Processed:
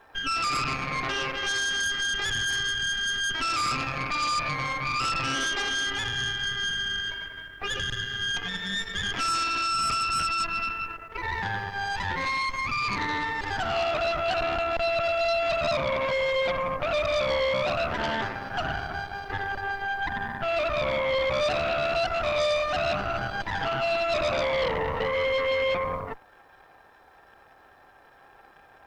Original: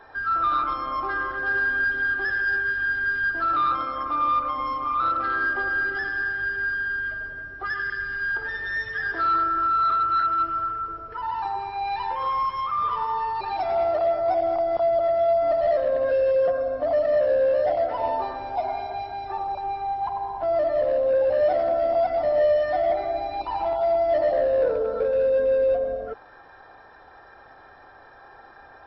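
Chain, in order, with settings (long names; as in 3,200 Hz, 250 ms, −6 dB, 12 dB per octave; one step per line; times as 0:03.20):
bit-depth reduction 12 bits, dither triangular
harmonic generator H 8 −8 dB, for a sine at −13 dBFS
level −6.5 dB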